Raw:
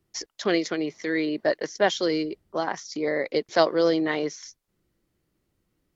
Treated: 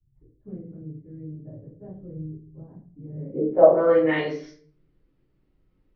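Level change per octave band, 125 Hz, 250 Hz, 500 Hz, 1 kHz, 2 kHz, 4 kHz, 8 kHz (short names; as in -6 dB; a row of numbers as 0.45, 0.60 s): +6.0 dB, -3.0 dB, +2.5 dB, -2.0 dB, -5.5 dB, under -10 dB, n/a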